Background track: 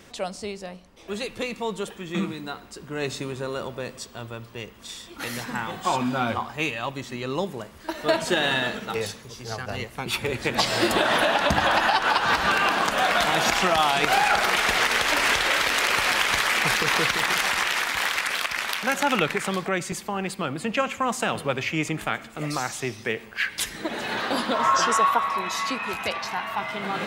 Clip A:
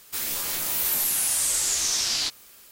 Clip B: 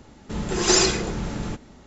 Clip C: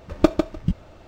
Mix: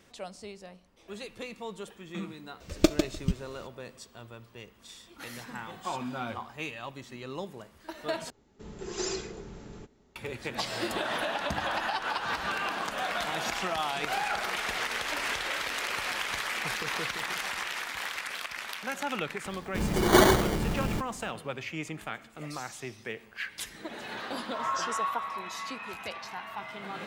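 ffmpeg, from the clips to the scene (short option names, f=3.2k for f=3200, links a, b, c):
-filter_complex "[2:a]asplit=2[a][b];[0:a]volume=-10.5dB[c];[3:a]firequalizer=gain_entry='entry(460,0);entry(910,-7);entry(2100,5);entry(6000,14)':delay=0.05:min_phase=1[d];[a]equalizer=f=410:w=6:g=10.5[e];[b]acrusher=samples=17:mix=1:aa=0.000001[f];[c]asplit=2[g][h];[g]atrim=end=8.304[i];[e]atrim=end=1.86,asetpts=PTS-STARTPTS,volume=-17dB[j];[h]atrim=start=10.156[k];[d]atrim=end=1.07,asetpts=PTS-STARTPTS,volume=-5.5dB,afade=t=in:d=0.004:c=hsin,afade=t=out:st=1.066:d=0.004:c=hsin,adelay=2600[l];[f]atrim=end=1.86,asetpts=PTS-STARTPTS,volume=-1dB,afade=t=in:d=0.004:c=hsin,afade=t=out:st=1.856:d=0.004:c=hsin,adelay=19450[m];[i][j]acrossfade=d=0.004:c1=hsin:c2=hsin[n];[n][k]acrossfade=d=0.004:c1=hsin:c2=hsin[o];[o][l][m]amix=inputs=3:normalize=0"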